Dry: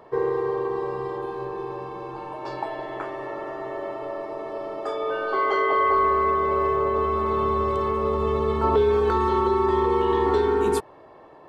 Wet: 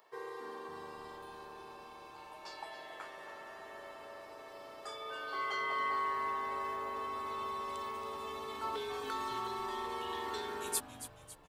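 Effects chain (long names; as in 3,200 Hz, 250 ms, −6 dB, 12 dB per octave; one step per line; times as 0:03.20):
first difference
on a send: echo with shifted repeats 276 ms, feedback 52%, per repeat −150 Hz, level −12 dB
on the sum: level +2 dB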